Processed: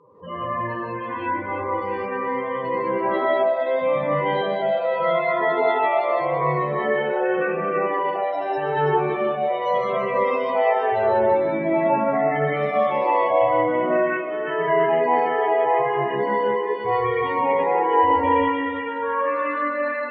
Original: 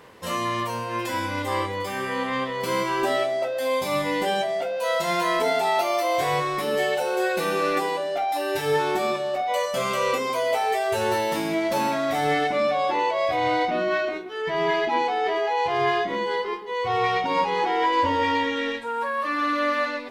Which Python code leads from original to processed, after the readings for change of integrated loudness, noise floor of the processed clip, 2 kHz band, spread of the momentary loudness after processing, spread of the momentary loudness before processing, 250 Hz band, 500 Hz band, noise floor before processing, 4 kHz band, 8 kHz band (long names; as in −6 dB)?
+2.5 dB, −29 dBFS, 0.0 dB, 7 LU, 5 LU, +2.0 dB, +4.0 dB, −30 dBFS, −9.0 dB, below −30 dB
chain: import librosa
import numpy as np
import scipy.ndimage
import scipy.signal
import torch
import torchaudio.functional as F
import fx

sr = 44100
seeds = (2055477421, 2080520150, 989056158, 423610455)

p1 = fx.dereverb_blind(x, sr, rt60_s=1.6)
p2 = fx.high_shelf(p1, sr, hz=4300.0, db=-7.5)
p3 = fx.spec_topn(p2, sr, count=16)
p4 = fx.air_absorb(p3, sr, metres=88.0)
p5 = p4 + fx.echo_alternate(p4, sr, ms=166, hz=880.0, feedback_pct=55, wet_db=-3, dry=0)
p6 = fx.rev_gated(p5, sr, seeds[0], gate_ms=220, shape='rising', drr_db=-7.0)
y = F.gain(torch.from_numpy(p6), -3.0).numpy()